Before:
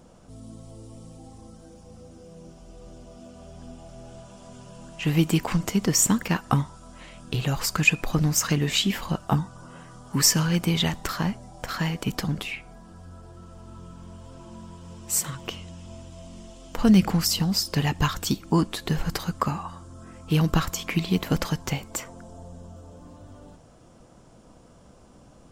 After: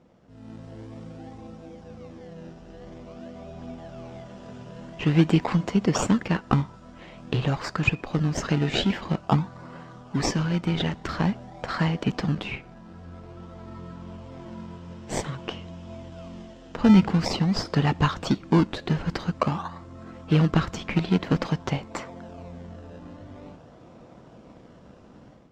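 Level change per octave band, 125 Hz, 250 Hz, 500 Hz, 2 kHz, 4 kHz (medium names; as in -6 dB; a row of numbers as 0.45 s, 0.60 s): +1.0 dB, +1.5 dB, +2.5 dB, -2.5 dB, -5.0 dB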